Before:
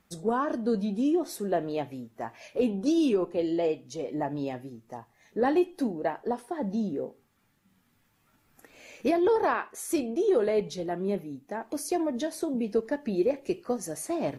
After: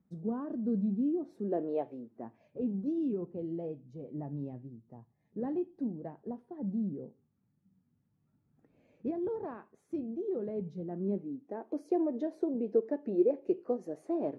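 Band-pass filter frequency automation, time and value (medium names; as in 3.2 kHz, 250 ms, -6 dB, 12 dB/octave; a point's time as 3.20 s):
band-pass filter, Q 1.5
1.27 s 180 Hz
1.84 s 540 Hz
2.48 s 150 Hz
10.58 s 150 Hz
11.63 s 390 Hz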